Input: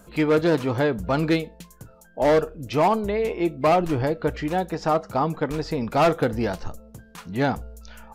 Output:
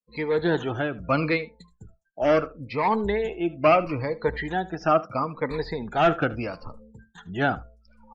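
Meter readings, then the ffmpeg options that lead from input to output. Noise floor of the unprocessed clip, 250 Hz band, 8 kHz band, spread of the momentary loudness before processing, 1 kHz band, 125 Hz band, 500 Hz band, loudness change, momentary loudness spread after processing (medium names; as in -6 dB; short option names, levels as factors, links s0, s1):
-51 dBFS, -4.0 dB, under -10 dB, 13 LU, -1.0 dB, -4.0 dB, -2.0 dB, -2.0 dB, 9 LU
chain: -filter_complex "[0:a]afftfilt=real='re*pow(10,10/40*sin(2*PI*(0.95*log(max(b,1)*sr/1024/100)/log(2)-(-0.75)*(pts-256)/sr)))':imag='im*pow(10,10/40*sin(2*PI*(0.95*log(max(b,1)*sr/1024/100)/log(2)-(-0.75)*(pts-256)/sr)))':win_size=1024:overlap=0.75,agate=range=0.0224:threshold=0.00794:ratio=3:detection=peak,afftdn=nr=31:nf=-40,acrossover=split=3100[s0][s1];[s1]acompressor=threshold=0.00447:ratio=4:attack=1:release=60[s2];[s0][s2]amix=inputs=2:normalize=0,equalizer=f=4500:w=0.95:g=7,acrossover=split=350|1500|2400[s3][s4][s5][s6];[s5]dynaudnorm=f=120:g=13:m=2.66[s7];[s3][s4][s7][s6]amix=inputs=4:normalize=0,tremolo=f=1.6:d=0.42,aecho=1:1:76:0.106,aresample=22050,aresample=44100,volume=0.708"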